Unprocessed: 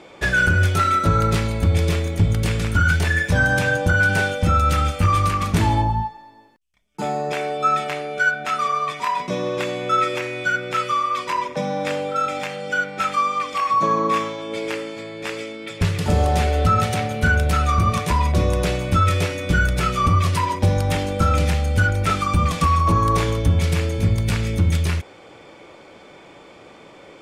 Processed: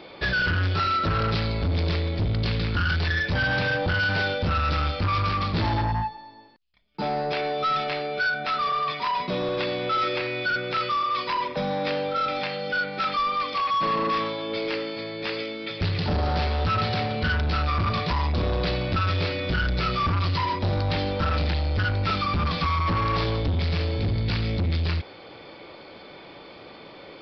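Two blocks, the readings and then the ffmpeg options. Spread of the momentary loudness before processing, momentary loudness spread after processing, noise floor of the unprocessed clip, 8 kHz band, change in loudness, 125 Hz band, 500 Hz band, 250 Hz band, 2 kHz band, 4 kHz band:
7 LU, 8 LU, -45 dBFS, under -20 dB, -5.0 dB, -6.0 dB, -4.0 dB, -5.0 dB, -5.5 dB, +0.5 dB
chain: -af "equalizer=f=4.3k:w=2.8:g=8.5,aresample=11025,asoftclip=type=tanh:threshold=-21dB,aresample=44100"

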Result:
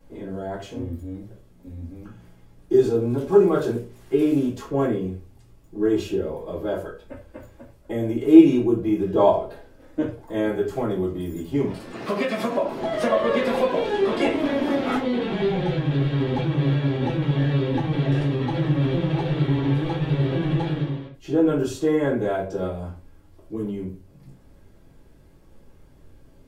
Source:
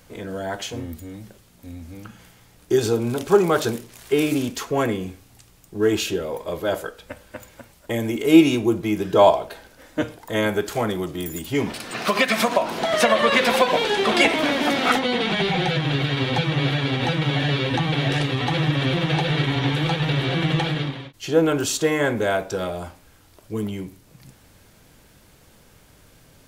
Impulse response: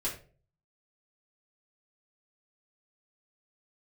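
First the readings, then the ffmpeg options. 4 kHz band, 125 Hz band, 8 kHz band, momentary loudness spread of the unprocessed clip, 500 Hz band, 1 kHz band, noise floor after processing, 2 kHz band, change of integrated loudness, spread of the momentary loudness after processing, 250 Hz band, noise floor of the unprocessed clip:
-12.5 dB, +0.5 dB, under -10 dB, 16 LU, -0.5 dB, -6.0 dB, -52 dBFS, -10.5 dB, -1.5 dB, 14 LU, +1.5 dB, -53 dBFS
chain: -filter_complex "[0:a]tiltshelf=f=1.2k:g=6.5[a];[1:a]atrim=start_sample=2205,afade=t=out:st=0.16:d=0.01,atrim=end_sample=7497[b];[a][b]afir=irnorm=-1:irlink=0,volume=-11dB"

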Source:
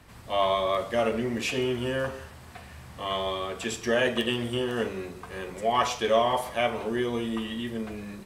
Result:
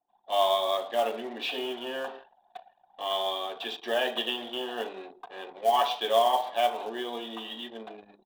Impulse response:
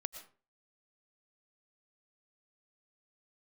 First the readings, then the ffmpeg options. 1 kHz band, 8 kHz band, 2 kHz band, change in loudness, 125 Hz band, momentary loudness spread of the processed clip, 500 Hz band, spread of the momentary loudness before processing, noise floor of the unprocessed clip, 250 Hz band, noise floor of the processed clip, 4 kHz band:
+1.5 dB, -7.5 dB, -5.0 dB, -1.0 dB, under -20 dB, 15 LU, -2.0 dB, 14 LU, -47 dBFS, -10.5 dB, -67 dBFS, +1.5 dB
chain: -af "highpass=f=310:w=0.5412,highpass=f=310:w=1.3066,equalizer=f=350:t=q:w=4:g=-5,equalizer=f=500:t=q:w=4:g=-6,equalizer=f=760:t=q:w=4:g=9,equalizer=f=1.3k:t=q:w=4:g=-6,equalizer=f=2.1k:t=q:w=4:g=-9,equalizer=f=3.6k:t=q:w=4:g=9,lowpass=f=4k:w=0.5412,lowpass=f=4k:w=1.3066,acrusher=bits=5:mode=log:mix=0:aa=0.000001,anlmdn=0.1,volume=-1.5dB"

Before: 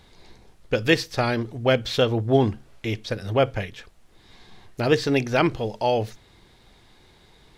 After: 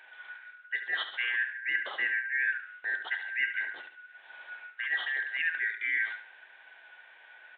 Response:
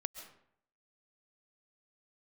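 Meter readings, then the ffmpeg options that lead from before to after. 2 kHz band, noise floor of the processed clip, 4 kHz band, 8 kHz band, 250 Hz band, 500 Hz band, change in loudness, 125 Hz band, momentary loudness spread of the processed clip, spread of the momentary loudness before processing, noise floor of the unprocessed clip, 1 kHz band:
+3.0 dB, -56 dBFS, -10.0 dB, under -35 dB, under -35 dB, -33.0 dB, -7.0 dB, under -40 dB, 17 LU, 10 LU, -55 dBFS, -18.5 dB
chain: -af "afftfilt=real='real(if(lt(b,272),68*(eq(floor(b/68),0)*2+eq(floor(b/68),1)*0+eq(floor(b/68),2)*3+eq(floor(b/68),3)*1)+mod(b,68),b),0)':imag='imag(if(lt(b,272),68*(eq(floor(b/68),0)*2+eq(floor(b/68),1)*0+eq(floor(b/68),2)*3+eq(floor(b/68),3)*1)+mod(b,68),b),0)':win_size=2048:overlap=0.75,highpass=550,aemphasis=mode=production:type=50fm,areverse,acompressor=threshold=-26dB:ratio=10,areverse,flanger=delay=3.5:depth=5.9:regen=90:speed=0.45:shape=triangular,aecho=1:1:72|144|216|288:0.316|0.114|0.041|0.0148,aresample=8000,aresample=44100,volume=3.5dB"

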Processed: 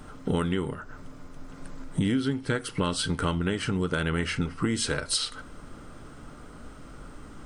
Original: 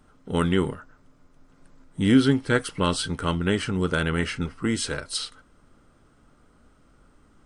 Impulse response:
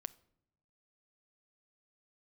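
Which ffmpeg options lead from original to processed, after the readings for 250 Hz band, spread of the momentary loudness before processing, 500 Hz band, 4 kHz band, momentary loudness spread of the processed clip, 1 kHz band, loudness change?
-4.5 dB, 11 LU, -4.5 dB, -1.0 dB, 20 LU, -3.5 dB, -3.5 dB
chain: -filter_complex "[0:a]acompressor=threshold=-37dB:ratio=10,asplit=2[a][b];[1:a]atrim=start_sample=2205[c];[b][c]afir=irnorm=-1:irlink=0,volume=9.5dB[d];[a][d]amix=inputs=2:normalize=0,volume=3.5dB"

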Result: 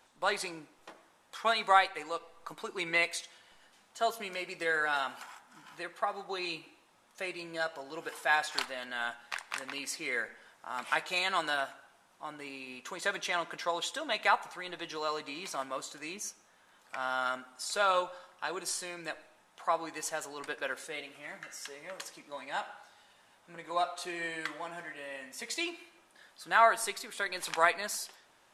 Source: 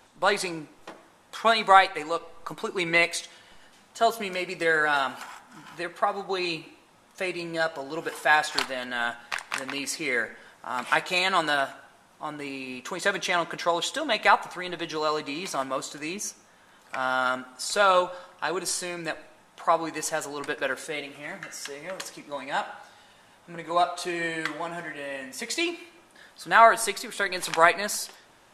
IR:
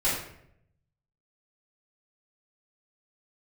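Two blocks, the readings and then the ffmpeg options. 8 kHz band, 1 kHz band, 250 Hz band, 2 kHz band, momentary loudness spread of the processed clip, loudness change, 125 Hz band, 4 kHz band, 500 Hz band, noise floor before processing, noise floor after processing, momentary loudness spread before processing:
-6.5 dB, -7.5 dB, -10.5 dB, -7.0 dB, 16 LU, -7.5 dB, -12.5 dB, -6.5 dB, -8.5 dB, -57 dBFS, -65 dBFS, 16 LU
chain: -af "lowshelf=f=370:g=-7,volume=-6.5dB"

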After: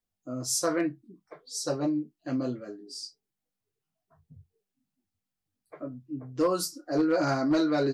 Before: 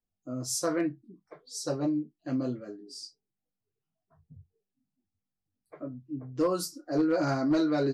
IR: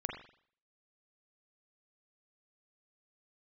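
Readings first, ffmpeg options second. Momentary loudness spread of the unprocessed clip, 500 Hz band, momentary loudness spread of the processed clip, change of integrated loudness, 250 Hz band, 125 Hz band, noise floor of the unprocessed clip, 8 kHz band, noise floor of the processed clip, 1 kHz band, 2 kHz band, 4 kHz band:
16 LU, +1.5 dB, 15 LU, +1.0 dB, +0.5 dB, -0.5 dB, under -85 dBFS, +3.5 dB, under -85 dBFS, +3.0 dB, +3.0 dB, +3.5 dB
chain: -af "lowshelf=f=410:g=-4.5,volume=3.5dB"

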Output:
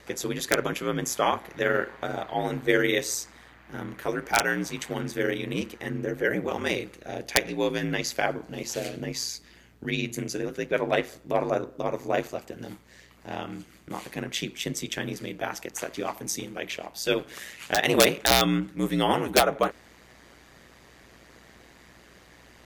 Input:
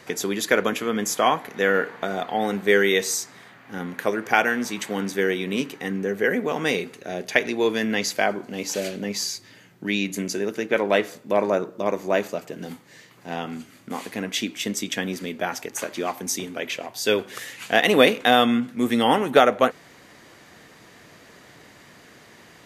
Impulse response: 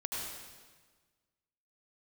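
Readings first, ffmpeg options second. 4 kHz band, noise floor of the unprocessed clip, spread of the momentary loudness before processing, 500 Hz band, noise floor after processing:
-2.5 dB, -50 dBFS, 15 LU, -5.0 dB, -54 dBFS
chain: -af "aeval=exprs='(mod(1.58*val(0)+1,2)-1)/1.58':c=same,aeval=exprs='val(0)*sin(2*PI*60*n/s)':c=same,aeval=exprs='val(0)+0.00112*(sin(2*PI*60*n/s)+sin(2*PI*2*60*n/s)/2+sin(2*PI*3*60*n/s)/3+sin(2*PI*4*60*n/s)/4+sin(2*PI*5*60*n/s)/5)':c=same,volume=-1.5dB"

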